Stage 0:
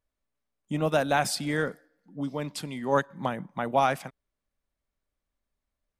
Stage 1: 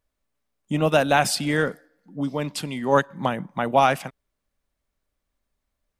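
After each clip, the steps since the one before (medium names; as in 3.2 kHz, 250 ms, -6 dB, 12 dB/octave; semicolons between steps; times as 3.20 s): dynamic bell 2.8 kHz, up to +6 dB, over -55 dBFS, Q 5.6; trim +5.5 dB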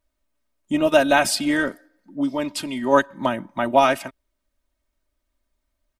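comb 3.2 ms, depth 75%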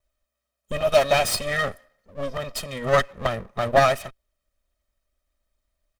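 comb filter that takes the minimum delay 1.6 ms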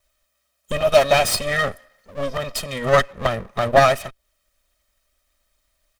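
tape noise reduction on one side only encoder only; trim +3.5 dB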